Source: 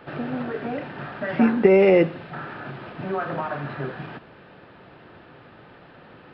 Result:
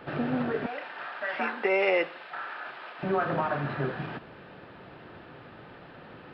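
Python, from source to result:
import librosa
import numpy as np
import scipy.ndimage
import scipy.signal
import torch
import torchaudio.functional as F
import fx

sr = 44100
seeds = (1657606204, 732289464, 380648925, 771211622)

y = fx.highpass(x, sr, hz=810.0, slope=12, at=(0.66, 3.03))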